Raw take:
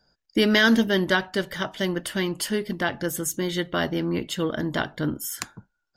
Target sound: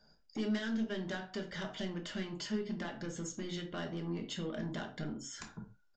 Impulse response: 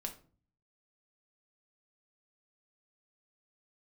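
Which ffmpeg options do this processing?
-filter_complex "[0:a]acompressor=threshold=-35dB:ratio=6,aresample=16000,asoftclip=type=tanh:threshold=-32dB,aresample=44100[link_01];[1:a]atrim=start_sample=2205,atrim=end_sample=6615[link_02];[link_01][link_02]afir=irnorm=-1:irlink=0,volume=1dB"

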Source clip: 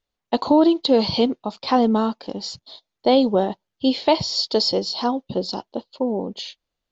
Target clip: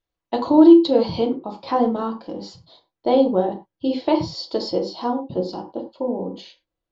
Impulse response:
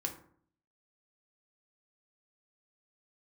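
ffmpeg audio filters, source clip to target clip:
-filter_complex "[0:a]asetnsamples=nb_out_samples=441:pad=0,asendcmd='0.87 highshelf g -11',highshelf=frequency=2600:gain=-4.5[link_01];[1:a]atrim=start_sample=2205,afade=type=out:start_time=0.17:duration=0.01,atrim=end_sample=7938[link_02];[link_01][link_02]afir=irnorm=-1:irlink=0,volume=-2dB"

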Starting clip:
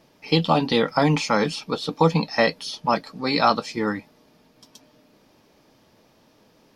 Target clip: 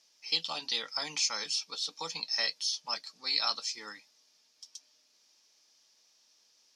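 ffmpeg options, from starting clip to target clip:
ffmpeg -i in.wav -af "bandpass=frequency=5900:width_type=q:width=2.4:csg=0,volume=4.5dB" out.wav

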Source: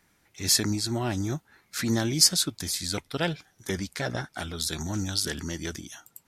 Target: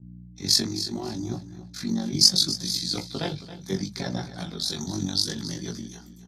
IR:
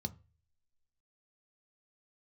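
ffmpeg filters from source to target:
-filter_complex "[0:a]agate=range=-29dB:threshold=-54dB:ratio=16:detection=peak,highpass=240,asettb=1/sr,asplit=3[link_01][link_02][link_03];[link_01]atrim=end=0.614[link_04];[link_02]atrim=start=0.61:end=2.13,asetpts=PTS-STARTPTS,afade=type=in:duration=0.004:curve=qsin,afade=type=out:start_time=1.516:duration=0.004:curve=qsin,acompressor=threshold=-31dB:ratio=6[link_05];[link_03]atrim=start=2.126[link_06];[link_04][link_05]acrossfade=duration=0.004:curve1=hsin:curve2=qsin[link_07];[link_07][link_06]acrossfade=duration=0.004:curve1=qsin:curve2=hsin,tremolo=f=47:d=0.75,aeval=exprs='val(0)+0.00224*(sin(2*PI*60*n/s)+sin(2*PI*2*60*n/s)/2+sin(2*PI*3*60*n/s)/3+sin(2*PI*4*60*n/s)/4+sin(2*PI*5*60*n/s)/5)':channel_layout=same,flanger=delay=16.5:depth=5.3:speed=0.71,aecho=1:1:273|546|819:0.2|0.0579|0.0168,asplit=2[link_08][link_09];[1:a]atrim=start_sample=2205,atrim=end_sample=3087[link_10];[link_09][link_10]afir=irnorm=-1:irlink=0,volume=9dB[link_11];[link_08][link_11]amix=inputs=2:normalize=0,adynamicequalizer=threshold=0.0158:dfrequency=2500:dqfactor=0.7:tfrequency=2500:tqfactor=0.7:attack=5:release=100:ratio=0.375:range=2.5:mode=boostabove:tftype=highshelf,volume=-4dB"

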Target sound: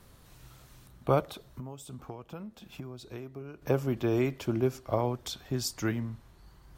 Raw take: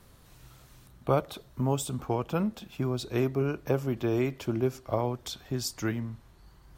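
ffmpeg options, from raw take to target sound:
ffmpeg -i in.wav -filter_complex "[0:a]asettb=1/sr,asplit=3[link_01][link_02][link_03];[link_01]atrim=end=1.294[link_04];[link_02]atrim=start=1.29:end=3.62,asetpts=PTS-STARTPTS,afade=type=in:duration=0.004:curve=qsin,afade=type=out:start_time=2.326:duration=0.004:curve=qsin,acompressor=threshold=-40dB:ratio=6[link_05];[link_03]atrim=start=3.616[link_06];[link_04][link_05]acrossfade=duration=0.004:curve1=hsin:curve2=qsin[link_07];[link_07][link_06]acrossfade=duration=0.004:curve1=qsin:curve2=hsin" out.wav

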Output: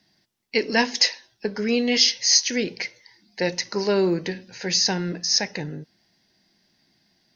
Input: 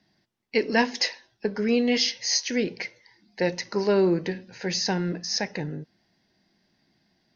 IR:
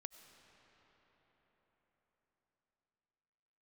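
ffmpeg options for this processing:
-af "highshelf=frequency=3200:gain=10"

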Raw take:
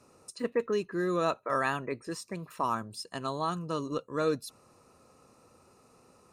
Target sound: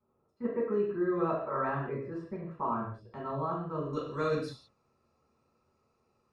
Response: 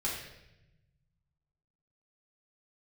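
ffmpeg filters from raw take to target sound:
-filter_complex "[0:a]asetnsamples=nb_out_samples=441:pad=0,asendcmd='3.93 lowpass f 5000',lowpass=1200,agate=range=-13dB:threshold=-51dB:ratio=16:detection=peak[link_01];[1:a]atrim=start_sample=2205,afade=type=out:start_time=0.24:duration=0.01,atrim=end_sample=11025[link_02];[link_01][link_02]afir=irnorm=-1:irlink=0,volume=-4.5dB"

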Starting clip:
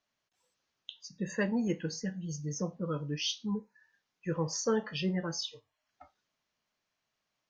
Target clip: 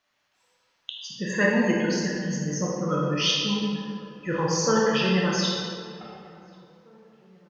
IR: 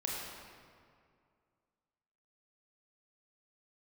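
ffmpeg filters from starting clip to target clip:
-filter_complex "[0:a]equalizer=frequency=1900:width=0.4:gain=7,asplit=2[link_01][link_02];[link_02]adelay=1091,lowpass=frequency=1200:poles=1,volume=-23.5dB,asplit=2[link_03][link_04];[link_04]adelay=1091,lowpass=frequency=1200:poles=1,volume=0.46,asplit=2[link_05][link_06];[link_06]adelay=1091,lowpass=frequency=1200:poles=1,volume=0.46[link_07];[link_01][link_03][link_05][link_07]amix=inputs=4:normalize=0[link_08];[1:a]atrim=start_sample=2205[link_09];[link_08][link_09]afir=irnorm=-1:irlink=0,volume=4.5dB"

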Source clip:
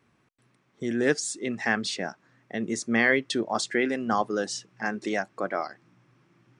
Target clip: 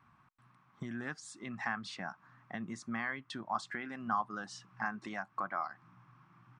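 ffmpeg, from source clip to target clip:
ffmpeg -i in.wav -af "acompressor=threshold=-36dB:ratio=3,firequalizer=gain_entry='entry(160,0);entry(450,-18);entry(750,0);entry(1100,8);entry(1900,-4);entry(4100,-8);entry(6600,-12)':delay=0.05:min_phase=1,volume=1dB" out.wav

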